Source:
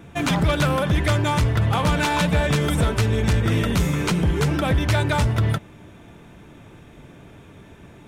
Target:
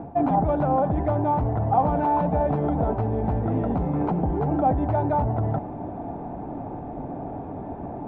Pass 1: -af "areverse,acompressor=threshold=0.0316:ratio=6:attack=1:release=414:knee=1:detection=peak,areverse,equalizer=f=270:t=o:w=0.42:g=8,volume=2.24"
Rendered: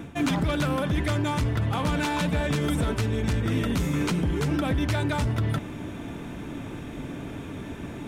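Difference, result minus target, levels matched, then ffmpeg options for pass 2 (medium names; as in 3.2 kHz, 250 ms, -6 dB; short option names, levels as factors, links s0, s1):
1 kHz band -7.0 dB
-af "areverse,acompressor=threshold=0.0316:ratio=6:attack=1:release=414:knee=1:detection=peak,areverse,lowpass=f=770:t=q:w=7.3,equalizer=f=270:t=o:w=0.42:g=8,volume=2.24"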